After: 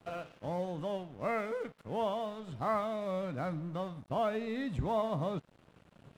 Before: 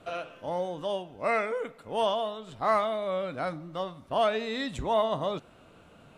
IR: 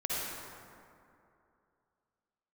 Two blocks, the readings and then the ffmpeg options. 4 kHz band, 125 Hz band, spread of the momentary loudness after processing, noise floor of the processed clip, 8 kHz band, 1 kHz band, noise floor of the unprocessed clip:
−12.0 dB, +3.5 dB, 7 LU, −64 dBFS, can't be measured, −7.0 dB, −56 dBFS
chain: -filter_complex "[0:a]asplit=2[link_01][link_02];[link_02]acompressor=threshold=-36dB:ratio=6,volume=-1dB[link_03];[link_01][link_03]amix=inputs=2:normalize=0,equalizer=frequency=130:width_type=o:width=2:gain=11.5,acrossover=split=2600[link_04][link_05];[link_05]acompressor=threshold=-49dB:ratio=4:attack=1:release=60[link_06];[link_04][link_06]amix=inputs=2:normalize=0,aeval=exprs='sgn(val(0))*max(abs(val(0))-0.00668,0)':channel_layout=same,volume=-9dB"

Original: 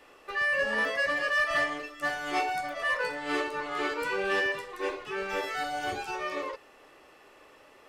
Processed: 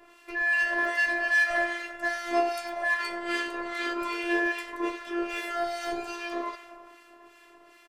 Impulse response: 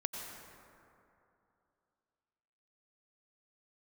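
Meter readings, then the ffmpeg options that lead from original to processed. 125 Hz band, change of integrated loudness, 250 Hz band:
below −10 dB, +1.5 dB, +6.0 dB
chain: -filter_complex "[0:a]asplit=6[link_01][link_02][link_03][link_04][link_05][link_06];[link_02]adelay=97,afreqshift=84,volume=-15dB[link_07];[link_03]adelay=194,afreqshift=168,volume=-20.4dB[link_08];[link_04]adelay=291,afreqshift=252,volume=-25.7dB[link_09];[link_05]adelay=388,afreqshift=336,volume=-31.1dB[link_10];[link_06]adelay=485,afreqshift=420,volume=-36.4dB[link_11];[link_01][link_07][link_08][link_09][link_10][link_11]amix=inputs=6:normalize=0,asplit=2[link_12][link_13];[1:a]atrim=start_sample=2205[link_14];[link_13][link_14]afir=irnorm=-1:irlink=0,volume=-10.5dB[link_15];[link_12][link_15]amix=inputs=2:normalize=0,acrossover=split=1400[link_16][link_17];[link_16]aeval=exprs='val(0)*(1-0.7/2+0.7/2*cos(2*PI*2.5*n/s))':channel_layout=same[link_18];[link_17]aeval=exprs='val(0)*(1-0.7/2-0.7/2*cos(2*PI*2.5*n/s))':channel_layout=same[link_19];[link_18][link_19]amix=inputs=2:normalize=0,afftfilt=real='hypot(re,im)*cos(PI*b)':imag='0':win_size=512:overlap=0.75,volume=5.5dB"

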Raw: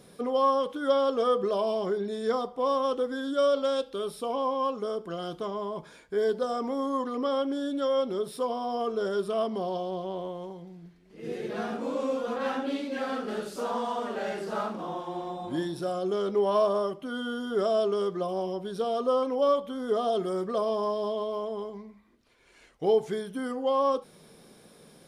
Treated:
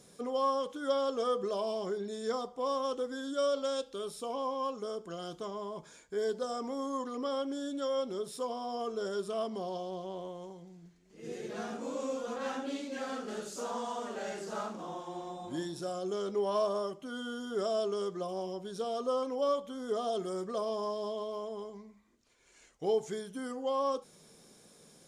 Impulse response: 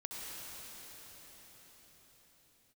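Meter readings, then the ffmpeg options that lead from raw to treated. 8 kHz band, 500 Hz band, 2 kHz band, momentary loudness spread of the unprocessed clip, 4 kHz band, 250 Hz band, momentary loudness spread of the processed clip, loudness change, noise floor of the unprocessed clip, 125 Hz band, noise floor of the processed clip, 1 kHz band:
+2.5 dB, −6.5 dB, −6.0 dB, 9 LU, −4.0 dB, −6.5 dB, 9 LU, −6.5 dB, −56 dBFS, −6.5 dB, −60 dBFS, −6.5 dB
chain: -af "equalizer=frequency=6900:width_type=o:width=0.7:gain=13.5,volume=-6.5dB"

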